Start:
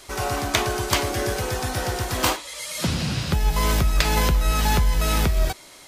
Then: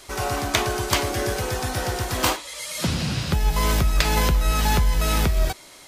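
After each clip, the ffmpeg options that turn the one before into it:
ffmpeg -i in.wav -af anull out.wav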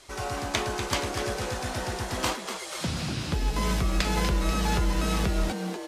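ffmpeg -i in.wav -filter_complex "[0:a]lowpass=10000,asplit=2[link_01][link_02];[link_02]asplit=8[link_03][link_04][link_05][link_06][link_07][link_08][link_09][link_10];[link_03]adelay=243,afreqshift=140,volume=-8.5dB[link_11];[link_04]adelay=486,afreqshift=280,volume=-12.7dB[link_12];[link_05]adelay=729,afreqshift=420,volume=-16.8dB[link_13];[link_06]adelay=972,afreqshift=560,volume=-21dB[link_14];[link_07]adelay=1215,afreqshift=700,volume=-25.1dB[link_15];[link_08]adelay=1458,afreqshift=840,volume=-29.3dB[link_16];[link_09]adelay=1701,afreqshift=980,volume=-33.4dB[link_17];[link_10]adelay=1944,afreqshift=1120,volume=-37.6dB[link_18];[link_11][link_12][link_13][link_14][link_15][link_16][link_17][link_18]amix=inputs=8:normalize=0[link_19];[link_01][link_19]amix=inputs=2:normalize=0,volume=-6.5dB" out.wav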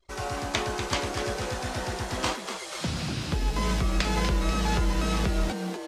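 ffmpeg -i in.wav -filter_complex "[0:a]acrossover=split=8700[link_01][link_02];[link_02]acompressor=threshold=-52dB:ratio=4:attack=1:release=60[link_03];[link_01][link_03]amix=inputs=2:normalize=0,anlmdn=0.0158" out.wav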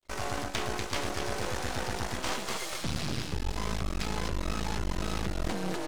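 ffmpeg -i in.wav -af "areverse,acompressor=threshold=-32dB:ratio=6,areverse,aeval=exprs='max(val(0),0)':channel_layout=same,volume=6.5dB" out.wav

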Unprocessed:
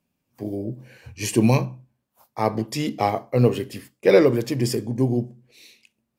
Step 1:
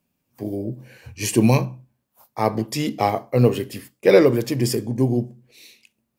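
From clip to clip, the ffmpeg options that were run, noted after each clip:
ffmpeg -i in.wav -af "highshelf=frequency=12000:gain=7,volume=1.5dB" out.wav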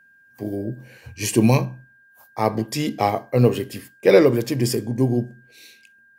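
ffmpeg -i in.wav -af "aeval=exprs='val(0)+0.00251*sin(2*PI*1600*n/s)':channel_layout=same" out.wav

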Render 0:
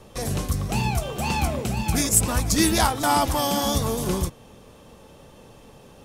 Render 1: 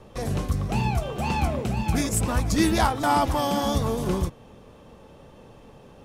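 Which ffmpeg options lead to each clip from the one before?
ffmpeg -i in.wav -af "highshelf=frequency=4200:gain=-11.5" out.wav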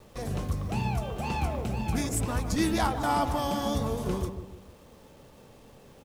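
ffmpeg -i in.wav -filter_complex "[0:a]acrusher=bits=8:mix=0:aa=0.000001,asplit=2[link_01][link_02];[link_02]adelay=152,lowpass=frequency=860:poles=1,volume=-7dB,asplit=2[link_03][link_04];[link_04]adelay=152,lowpass=frequency=860:poles=1,volume=0.43,asplit=2[link_05][link_06];[link_06]adelay=152,lowpass=frequency=860:poles=1,volume=0.43,asplit=2[link_07][link_08];[link_08]adelay=152,lowpass=frequency=860:poles=1,volume=0.43,asplit=2[link_09][link_10];[link_10]adelay=152,lowpass=frequency=860:poles=1,volume=0.43[link_11];[link_03][link_05][link_07][link_09][link_11]amix=inputs=5:normalize=0[link_12];[link_01][link_12]amix=inputs=2:normalize=0,volume=-5.5dB" out.wav

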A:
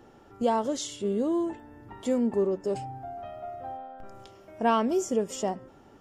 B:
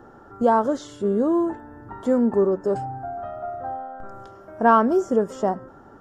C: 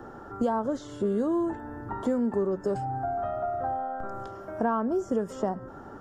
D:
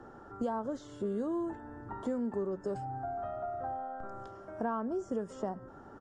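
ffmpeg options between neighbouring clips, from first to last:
ffmpeg -i in.wav -filter_complex "[0:a]acrossover=split=5100[link_01][link_02];[link_02]acompressor=threshold=-47dB:ratio=4:attack=1:release=60[link_03];[link_01][link_03]amix=inputs=2:normalize=0,highshelf=frequency=1900:width_type=q:width=3:gain=-8,volume=6dB" out.wav
ffmpeg -i in.wav -filter_complex "[0:a]acrossover=split=160|1600[link_01][link_02][link_03];[link_01]acompressor=threshold=-41dB:ratio=4[link_04];[link_02]acompressor=threshold=-31dB:ratio=4[link_05];[link_03]acompressor=threshold=-54dB:ratio=4[link_06];[link_04][link_05][link_06]amix=inputs=3:normalize=0,volume=3.5dB" out.wav
ffmpeg -i in.wav -af "aresample=22050,aresample=44100,volume=-7.5dB" out.wav

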